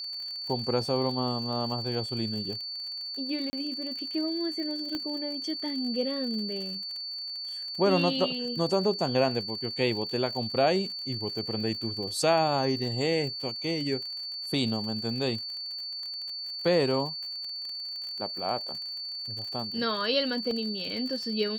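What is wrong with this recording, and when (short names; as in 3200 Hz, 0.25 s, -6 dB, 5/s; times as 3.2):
crackle 57/s -36 dBFS
tone 4500 Hz -34 dBFS
3.5–3.53 gap 30 ms
4.95 pop -20 dBFS
20.51 gap 2 ms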